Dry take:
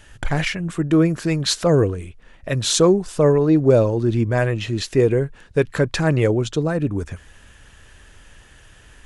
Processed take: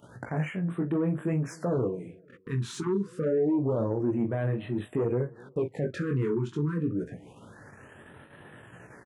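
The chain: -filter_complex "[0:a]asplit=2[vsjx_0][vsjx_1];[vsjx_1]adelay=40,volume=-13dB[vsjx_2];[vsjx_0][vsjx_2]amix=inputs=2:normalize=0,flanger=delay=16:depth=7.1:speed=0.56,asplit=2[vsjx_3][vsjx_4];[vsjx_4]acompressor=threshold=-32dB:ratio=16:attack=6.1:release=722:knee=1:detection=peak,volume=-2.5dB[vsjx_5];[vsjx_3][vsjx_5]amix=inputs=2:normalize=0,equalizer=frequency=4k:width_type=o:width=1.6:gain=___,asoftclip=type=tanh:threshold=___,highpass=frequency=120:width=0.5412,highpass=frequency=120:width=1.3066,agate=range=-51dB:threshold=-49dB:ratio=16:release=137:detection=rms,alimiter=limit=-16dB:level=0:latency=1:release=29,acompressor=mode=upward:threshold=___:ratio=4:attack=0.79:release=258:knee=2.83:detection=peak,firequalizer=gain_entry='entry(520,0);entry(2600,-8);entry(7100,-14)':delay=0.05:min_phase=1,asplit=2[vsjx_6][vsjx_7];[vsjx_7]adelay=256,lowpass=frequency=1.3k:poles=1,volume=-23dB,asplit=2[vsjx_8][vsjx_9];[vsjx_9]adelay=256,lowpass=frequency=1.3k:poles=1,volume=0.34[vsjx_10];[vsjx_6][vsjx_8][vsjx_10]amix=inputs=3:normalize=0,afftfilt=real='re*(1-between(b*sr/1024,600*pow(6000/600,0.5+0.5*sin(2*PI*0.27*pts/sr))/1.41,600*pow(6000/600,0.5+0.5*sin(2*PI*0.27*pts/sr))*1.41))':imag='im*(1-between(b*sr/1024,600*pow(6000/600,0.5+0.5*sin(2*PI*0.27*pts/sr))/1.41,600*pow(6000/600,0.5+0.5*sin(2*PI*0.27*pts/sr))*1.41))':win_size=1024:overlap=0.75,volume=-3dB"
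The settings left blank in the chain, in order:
-7, -15.5dB, -33dB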